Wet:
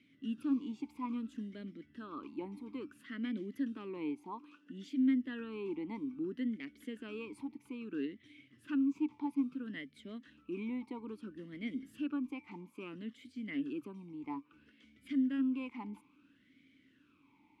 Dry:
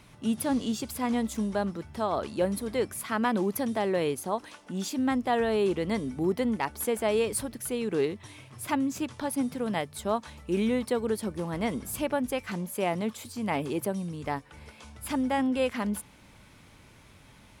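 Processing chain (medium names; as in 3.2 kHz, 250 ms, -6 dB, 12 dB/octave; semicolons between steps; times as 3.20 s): talking filter i-u 0.6 Hz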